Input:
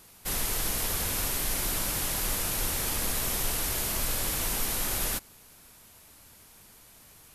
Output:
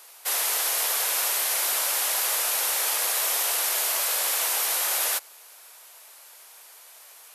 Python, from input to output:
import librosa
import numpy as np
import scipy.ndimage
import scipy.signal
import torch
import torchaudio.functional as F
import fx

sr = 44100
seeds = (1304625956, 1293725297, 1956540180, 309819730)

y = scipy.signal.sosfilt(scipy.signal.butter(4, 540.0, 'highpass', fs=sr, output='sos'), x)
y = y * librosa.db_to_amplitude(6.0)